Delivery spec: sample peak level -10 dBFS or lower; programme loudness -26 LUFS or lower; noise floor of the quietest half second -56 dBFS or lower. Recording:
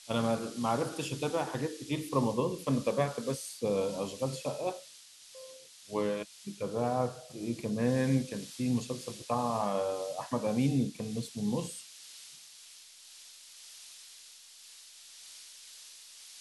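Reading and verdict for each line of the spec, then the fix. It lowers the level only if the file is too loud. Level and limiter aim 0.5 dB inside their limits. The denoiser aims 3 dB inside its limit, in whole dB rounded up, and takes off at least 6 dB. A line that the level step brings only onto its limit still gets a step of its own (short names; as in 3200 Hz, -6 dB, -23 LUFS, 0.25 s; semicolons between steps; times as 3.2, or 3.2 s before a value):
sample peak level -14.5 dBFS: OK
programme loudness -33.0 LUFS: OK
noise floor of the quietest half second -54 dBFS: fail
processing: denoiser 6 dB, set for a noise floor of -54 dBFS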